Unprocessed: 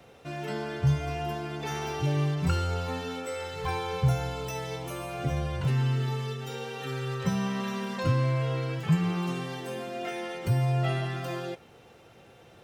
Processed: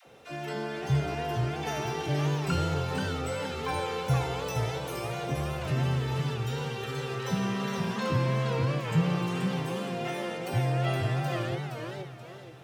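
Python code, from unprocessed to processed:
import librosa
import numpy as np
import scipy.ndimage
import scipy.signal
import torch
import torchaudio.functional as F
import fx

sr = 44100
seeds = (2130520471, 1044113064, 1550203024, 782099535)

y = fx.low_shelf(x, sr, hz=74.0, db=-10.0)
y = fx.dispersion(y, sr, late='lows', ms=67.0, hz=430.0)
y = fx.echo_warbled(y, sr, ms=475, feedback_pct=36, rate_hz=2.8, cents=208, wet_db=-4.5)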